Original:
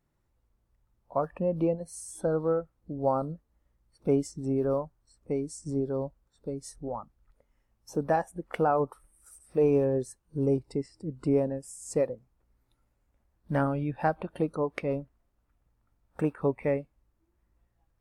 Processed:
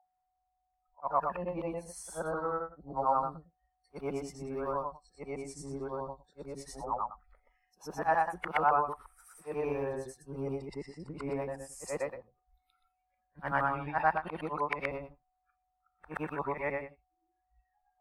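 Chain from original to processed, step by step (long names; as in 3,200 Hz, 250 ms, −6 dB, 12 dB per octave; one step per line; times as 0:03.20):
every overlapping window played backwards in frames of 248 ms
steady tone 740 Hz −64 dBFS
noise reduction from a noise print of the clip's start 22 dB
in parallel at +3 dB: downward compressor, threshold −38 dBFS, peak gain reduction 15 dB
on the sum: graphic EQ with 10 bands 125 Hz −8 dB, 250 Hz −8 dB, 500 Hz −7 dB, 1,000 Hz +9 dB, 2,000 Hz +6 dB, 8,000 Hz −7 dB
level −2 dB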